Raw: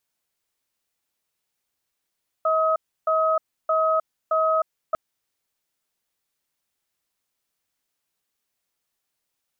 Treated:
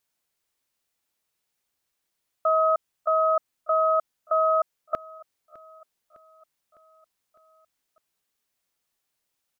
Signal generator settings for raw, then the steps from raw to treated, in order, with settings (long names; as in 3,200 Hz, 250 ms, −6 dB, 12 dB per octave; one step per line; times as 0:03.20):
tone pair in a cadence 638 Hz, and 1,270 Hz, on 0.31 s, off 0.31 s, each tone −20.5 dBFS 2.50 s
repeating echo 606 ms, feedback 59%, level −21 dB